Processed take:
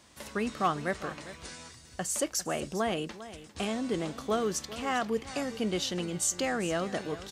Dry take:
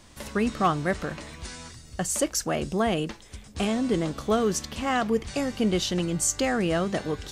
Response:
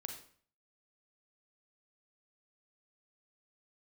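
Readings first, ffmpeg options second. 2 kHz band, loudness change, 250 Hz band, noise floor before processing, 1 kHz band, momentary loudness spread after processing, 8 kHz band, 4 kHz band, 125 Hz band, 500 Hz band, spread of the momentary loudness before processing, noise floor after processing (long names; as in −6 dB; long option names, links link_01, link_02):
−4.0 dB, −5.5 dB, −7.0 dB, −49 dBFS, −4.5 dB, 13 LU, −4.0 dB, −4.0 dB, −8.5 dB, −5.0 dB, 14 LU, −53 dBFS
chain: -af "highpass=50,lowshelf=frequency=230:gain=-7,aecho=1:1:401:0.178,volume=-4dB"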